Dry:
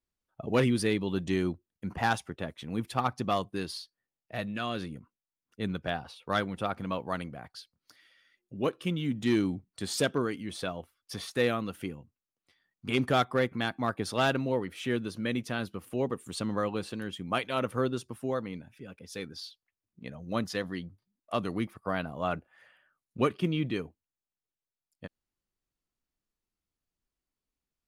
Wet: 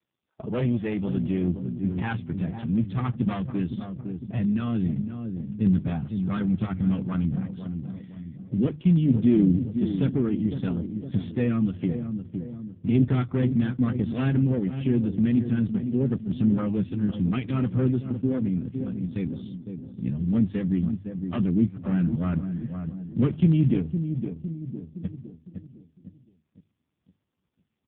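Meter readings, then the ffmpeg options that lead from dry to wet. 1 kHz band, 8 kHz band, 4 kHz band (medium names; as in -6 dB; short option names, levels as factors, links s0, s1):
-8.0 dB, under -35 dB, under -10 dB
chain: -filter_complex "[0:a]aeval=exprs='(tanh(17.8*val(0)+0.6)-tanh(0.6))/17.8':c=same,bandreject=f=50:t=h:w=6,bandreject=f=100:t=h:w=6,bandreject=f=150:t=h:w=6,asplit=2[s0][s1];[s1]adelay=509,lowpass=f=890:p=1,volume=0.355,asplit=2[s2][s3];[s3]adelay=509,lowpass=f=890:p=1,volume=0.44,asplit=2[s4][s5];[s5]adelay=509,lowpass=f=890:p=1,volume=0.44,asplit=2[s6][s7];[s7]adelay=509,lowpass=f=890:p=1,volume=0.44,asplit=2[s8][s9];[s9]adelay=509,lowpass=f=890:p=1,volume=0.44[s10];[s2][s4][s6][s8][s10]amix=inputs=5:normalize=0[s11];[s0][s11]amix=inputs=2:normalize=0,asubboost=boost=10.5:cutoff=200,bandreject=f=980:w=9,asplit=2[s12][s13];[s13]acompressor=threshold=0.0224:ratio=4,volume=1.19[s14];[s12][s14]amix=inputs=2:normalize=0,volume=1.19" -ar 8000 -c:a libopencore_amrnb -b:a 5150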